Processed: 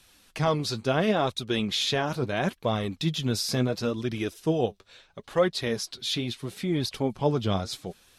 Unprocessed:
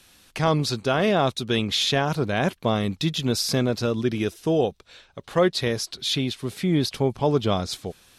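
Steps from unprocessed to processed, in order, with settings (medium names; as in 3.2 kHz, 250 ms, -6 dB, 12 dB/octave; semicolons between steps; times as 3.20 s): flange 0.73 Hz, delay 0.8 ms, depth 9.9 ms, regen +45%; 3.45–4.40 s: tape noise reduction on one side only encoder only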